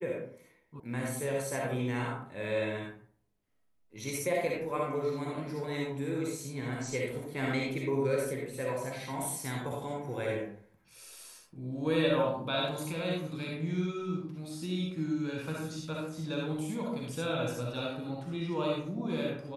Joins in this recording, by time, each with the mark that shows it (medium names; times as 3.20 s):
0.80 s: sound stops dead